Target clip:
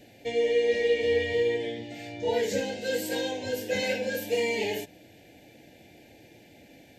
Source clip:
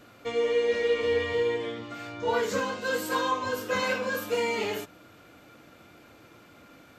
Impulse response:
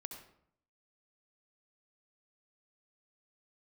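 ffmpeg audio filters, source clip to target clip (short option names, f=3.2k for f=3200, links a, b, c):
-af "asuperstop=centerf=1200:order=8:qfactor=1.5,volume=1dB"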